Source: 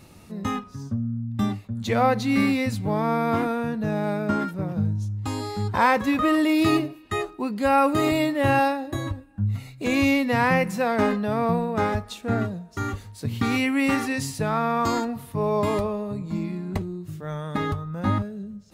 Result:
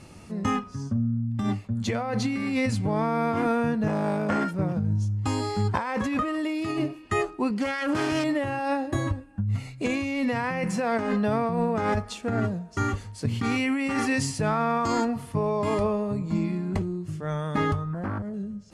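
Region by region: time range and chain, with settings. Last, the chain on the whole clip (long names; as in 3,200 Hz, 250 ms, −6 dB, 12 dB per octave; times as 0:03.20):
0:03.87–0:04.53: high-shelf EQ 5,800 Hz +5 dB + saturating transformer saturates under 970 Hz
0:07.50–0:08.24: phase distortion by the signal itself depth 0.36 ms + high-pass filter 56 Hz
0:17.93–0:18.34: flat-topped bell 3,900 Hz −10.5 dB 2.3 octaves + downward compressor 4 to 1, threshold −30 dBFS + highs frequency-modulated by the lows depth 0.52 ms
whole clip: low-pass filter 10,000 Hz 24 dB per octave; notch filter 3,800 Hz, Q 8.9; compressor whose output falls as the input rises −25 dBFS, ratio −1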